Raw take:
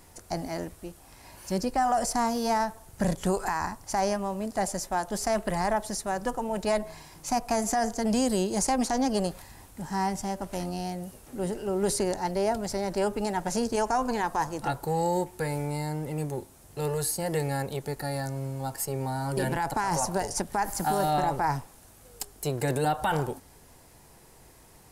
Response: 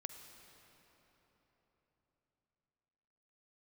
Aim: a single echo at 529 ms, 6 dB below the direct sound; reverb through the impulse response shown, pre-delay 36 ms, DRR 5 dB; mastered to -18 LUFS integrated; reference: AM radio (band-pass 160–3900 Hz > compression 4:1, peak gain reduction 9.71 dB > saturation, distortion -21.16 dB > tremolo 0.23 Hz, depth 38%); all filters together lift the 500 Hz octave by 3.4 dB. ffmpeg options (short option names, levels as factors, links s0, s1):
-filter_complex "[0:a]equalizer=f=500:t=o:g=4.5,aecho=1:1:529:0.501,asplit=2[s0][s1];[1:a]atrim=start_sample=2205,adelay=36[s2];[s1][s2]afir=irnorm=-1:irlink=0,volume=0.841[s3];[s0][s3]amix=inputs=2:normalize=0,highpass=160,lowpass=3900,acompressor=threshold=0.0398:ratio=4,asoftclip=threshold=0.0794,tremolo=f=0.23:d=0.38,volume=6.68"